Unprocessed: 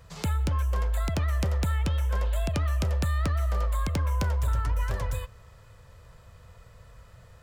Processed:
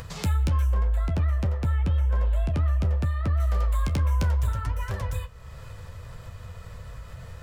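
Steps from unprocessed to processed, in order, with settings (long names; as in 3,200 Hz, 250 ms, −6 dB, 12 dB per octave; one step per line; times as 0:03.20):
high-shelf EQ 2,600 Hz +5.5 dB, from 0:00.73 −7.5 dB, from 0:03.40 +4.5 dB
flanger 0.64 Hz, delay 7.8 ms, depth 7.5 ms, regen −44%
bass and treble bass +4 dB, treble −4 dB
upward compression, threshold −32 dBFS
level +2.5 dB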